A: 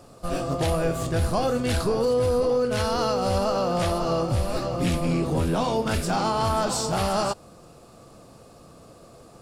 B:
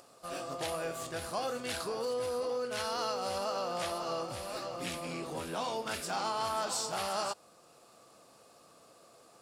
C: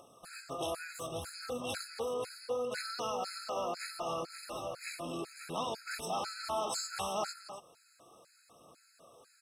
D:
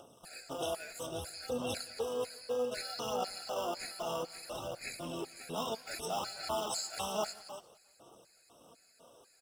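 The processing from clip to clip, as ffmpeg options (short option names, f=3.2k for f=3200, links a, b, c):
-af "highpass=f=860:p=1,acompressor=mode=upward:threshold=-49dB:ratio=2.5,volume=-6dB"
-af "aphaser=in_gain=1:out_gain=1:delay=3.2:decay=0.31:speed=0.69:type=triangular,aecho=1:1:269:0.266,afftfilt=real='re*gt(sin(2*PI*2*pts/sr)*(1-2*mod(floor(b*sr/1024/1300),2)),0)':imag='im*gt(sin(2*PI*2*pts/sr)*(1-2*mod(floor(b*sr/1024/1300),2)),0)':win_size=1024:overlap=0.75"
-filter_complex "[0:a]acrossover=split=830|1500[a][b][c];[b]acrusher=samples=21:mix=1:aa=0.000001[d];[a][d][c]amix=inputs=3:normalize=0,aphaser=in_gain=1:out_gain=1:delay=4.7:decay=0.33:speed=0.62:type=sinusoidal,aecho=1:1:176|352|528:0.0631|0.0334|0.0177"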